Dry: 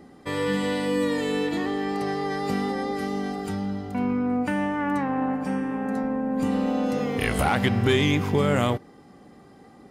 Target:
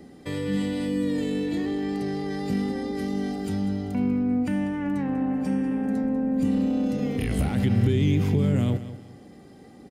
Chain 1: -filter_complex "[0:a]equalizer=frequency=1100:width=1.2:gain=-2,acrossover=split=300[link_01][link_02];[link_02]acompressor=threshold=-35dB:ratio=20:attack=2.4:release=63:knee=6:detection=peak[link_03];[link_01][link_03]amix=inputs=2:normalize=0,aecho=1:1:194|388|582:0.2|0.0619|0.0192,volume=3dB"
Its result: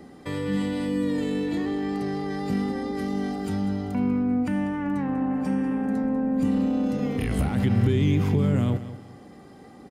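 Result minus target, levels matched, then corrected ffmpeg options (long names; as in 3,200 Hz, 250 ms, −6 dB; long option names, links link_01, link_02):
1,000 Hz band +3.0 dB
-filter_complex "[0:a]equalizer=frequency=1100:width=1.2:gain=-9.5,acrossover=split=300[link_01][link_02];[link_02]acompressor=threshold=-35dB:ratio=20:attack=2.4:release=63:knee=6:detection=peak[link_03];[link_01][link_03]amix=inputs=2:normalize=0,aecho=1:1:194|388|582:0.2|0.0619|0.0192,volume=3dB"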